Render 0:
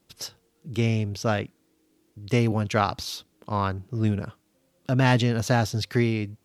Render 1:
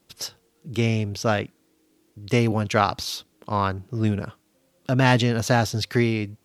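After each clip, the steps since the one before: bass shelf 240 Hz -3.5 dB; trim +3.5 dB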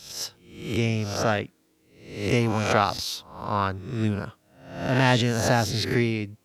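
reverse spectral sustain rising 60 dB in 0.66 s; trim -3 dB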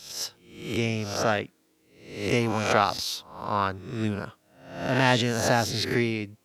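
bass shelf 150 Hz -7.5 dB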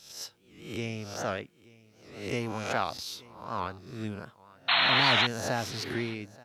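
painted sound noise, 4.68–5.27 s, 630–4300 Hz -16 dBFS; delay 880 ms -22.5 dB; warped record 78 rpm, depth 160 cents; trim -8 dB

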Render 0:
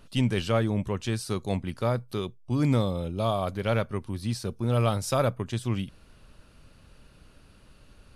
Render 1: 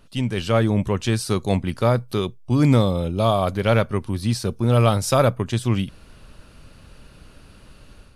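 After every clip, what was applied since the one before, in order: level rider gain up to 8 dB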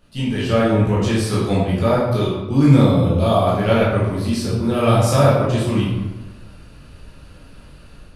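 reverberation RT60 1.2 s, pre-delay 12 ms, DRR -7.5 dB; trim -5 dB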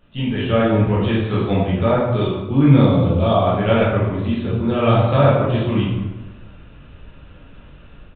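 resampled via 8 kHz

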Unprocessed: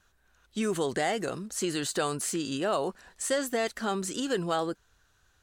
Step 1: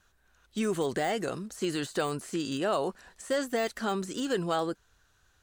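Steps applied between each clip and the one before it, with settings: de-esser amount 85%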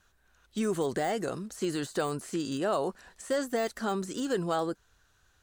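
dynamic bell 2.7 kHz, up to -5 dB, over -47 dBFS, Q 1.2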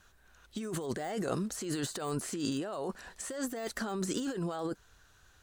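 compressor with a negative ratio -35 dBFS, ratio -1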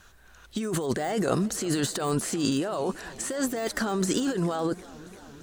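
modulated delay 339 ms, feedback 75%, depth 134 cents, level -21 dB; trim +8 dB

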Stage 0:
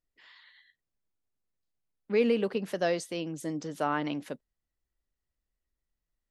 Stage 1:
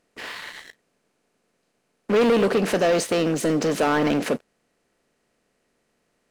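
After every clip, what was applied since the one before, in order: spectral levelling over time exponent 0.6; waveshaping leveller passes 3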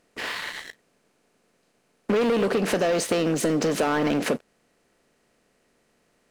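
compression 10:1, threshold -24 dBFS, peak gain reduction 8.5 dB; trim +4 dB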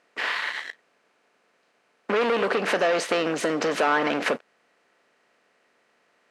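band-pass filter 1.5 kHz, Q 0.63; trim +5.5 dB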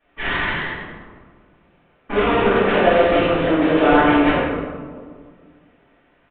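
in parallel at -9 dB: decimation with a swept rate 39×, swing 100% 1 Hz; on the sum: reverberation RT60 1.8 s, pre-delay 3 ms, DRR -18 dB; resampled via 8 kHz; trim -15 dB

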